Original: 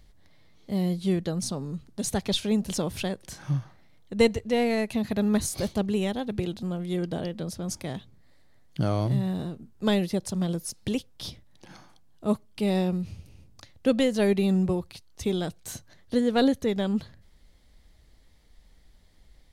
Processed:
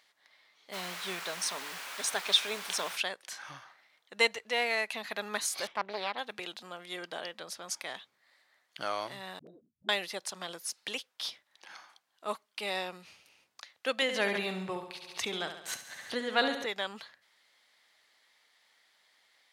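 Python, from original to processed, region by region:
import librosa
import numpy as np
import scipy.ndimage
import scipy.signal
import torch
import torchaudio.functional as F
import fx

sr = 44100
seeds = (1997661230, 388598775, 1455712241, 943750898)

y = fx.ripple_eq(x, sr, per_octave=1.6, db=6, at=(0.72, 2.95), fade=0.02)
y = fx.dmg_noise_colour(y, sr, seeds[0], colour='pink', level_db=-40.0, at=(0.72, 2.95), fade=0.02)
y = fx.chain(y, sr, fx.savgol(points=25),
    fx.doppler_dist(depth_ms=0.57), at=(5.67, 6.18))
y = fx.chain(y, sr, fx.envelope_sharpen(power=3.0),
    fx.dispersion(late='highs', ms=81.0, hz=330.0),
    fx.pre_swell(db_per_s=85.0), at=(9.39, 9.89))
y = fx.chain(y, sr, fx.bass_treble(bass_db=11, treble_db=-5),
    fx.echo_feedback(ms=69, feedback_pct=54, wet_db=-8.5),
    fx.pre_swell(db_per_s=68.0), at=(14.02, 16.66))
y = scipy.signal.sosfilt(scipy.signal.butter(2, 1300.0, 'highpass', fs=sr, output='sos'), y)
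y = fx.high_shelf(y, sr, hz=4100.0, db=-11.5)
y = y * librosa.db_to_amplitude(7.5)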